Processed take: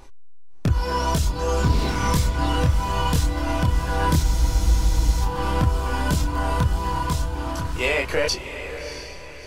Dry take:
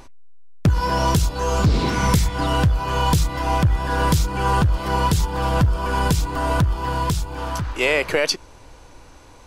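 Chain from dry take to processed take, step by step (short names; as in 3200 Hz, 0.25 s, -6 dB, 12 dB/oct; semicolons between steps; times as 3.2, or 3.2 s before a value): diffused feedback echo 0.656 s, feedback 43%, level -10 dB; chorus voices 4, 0.25 Hz, delay 26 ms, depth 2.3 ms; spectral freeze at 4.24, 0.98 s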